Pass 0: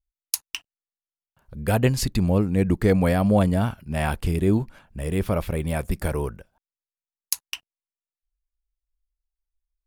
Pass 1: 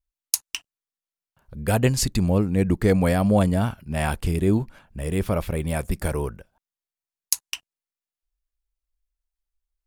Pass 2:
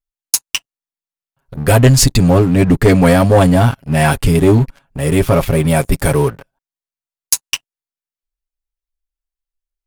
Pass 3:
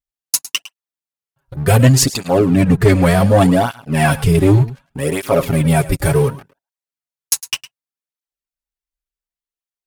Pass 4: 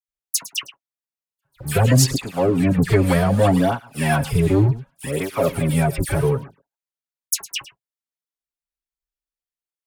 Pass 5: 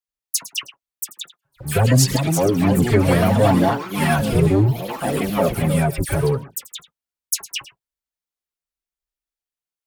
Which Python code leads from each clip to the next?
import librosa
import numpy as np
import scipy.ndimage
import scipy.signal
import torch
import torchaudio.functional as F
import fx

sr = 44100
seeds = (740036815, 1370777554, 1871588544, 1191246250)

y1 = fx.dynamic_eq(x, sr, hz=7500.0, q=1.1, threshold_db=-46.0, ratio=4.0, max_db=6)
y2 = y1 + 0.76 * np.pad(y1, (int(7.3 * sr / 1000.0), 0))[:len(y1)]
y2 = fx.leveller(y2, sr, passes=3)
y3 = y2 + 10.0 ** (-16.5 / 20.0) * np.pad(y2, (int(107 * sr / 1000.0), 0))[:len(y2)]
y3 = fx.flanger_cancel(y3, sr, hz=0.67, depth_ms=4.8)
y3 = y3 * librosa.db_to_amplitude(1.0)
y4 = fx.dispersion(y3, sr, late='lows', ms=86.0, hz=2200.0)
y4 = y4 * librosa.db_to_amplitude(-5.0)
y5 = fx.echo_pitch(y4, sr, ms=753, semitones=4, count=3, db_per_echo=-6.0)